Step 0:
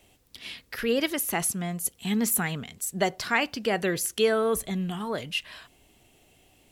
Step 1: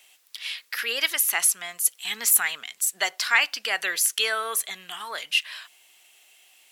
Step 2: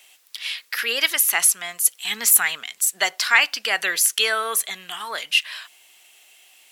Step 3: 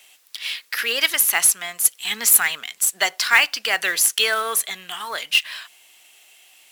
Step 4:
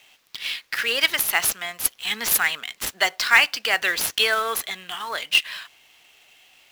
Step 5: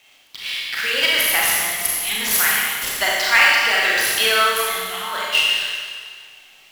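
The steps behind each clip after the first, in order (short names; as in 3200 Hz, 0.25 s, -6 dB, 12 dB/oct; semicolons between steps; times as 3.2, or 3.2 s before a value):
HPF 1400 Hz 12 dB/oct; gain +7.5 dB
dynamic EQ 180 Hz, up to +4 dB, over -51 dBFS, Q 1.3; gain +4 dB
short-mantissa float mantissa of 2-bit; gain +1 dB
median filter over 5 samples
Schroeder reverb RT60 1.8 s, combs from 29 ms, DRR -5 dB; gain -1.5 dB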